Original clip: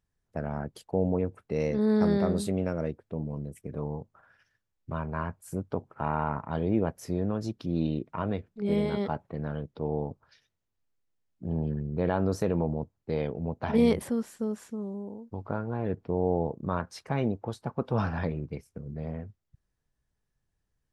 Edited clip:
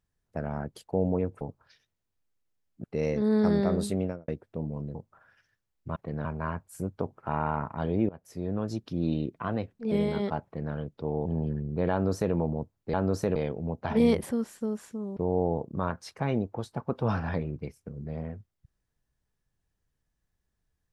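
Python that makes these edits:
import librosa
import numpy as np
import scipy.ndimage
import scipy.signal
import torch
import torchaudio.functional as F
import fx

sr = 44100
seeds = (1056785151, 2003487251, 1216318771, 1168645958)

y = fx.studio_fade_out(x, sr, start_s=2.57, length_s=0.28)
y = fx.edit(y, sr, fx.cut(start_s=3.52, length_s=0.45),
    fx.fade_in_from(start_s=6.82, length_s=0.55, floor_db=-23.0),
    fx.speed_span(start_s=8.09, length_s=0.6, speed=1.08),
    fx.duplicate(start_s=9.22, length_s=0.29, to_s=4.98),
    fx.move(start_s=10.03, length_s=1.43, to_s=1.41),
    fx.duplicate(start_s=12.12, length_s=0.42, to_s=13.14),
    fx.cut(start_s=14.95, length_s=1.11), tone=tone)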